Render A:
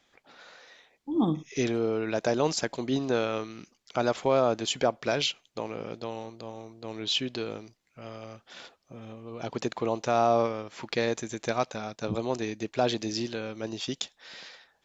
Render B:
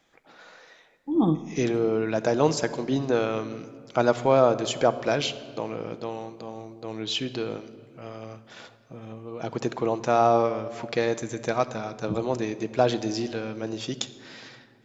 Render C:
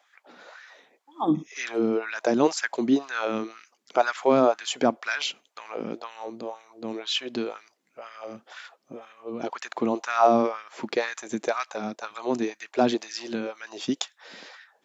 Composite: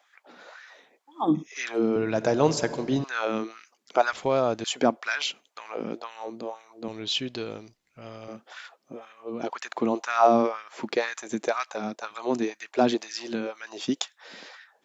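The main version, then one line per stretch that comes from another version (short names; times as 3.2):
C
1.96–3.04 from B
4.13–4.64 from A
6.88–8.28 from A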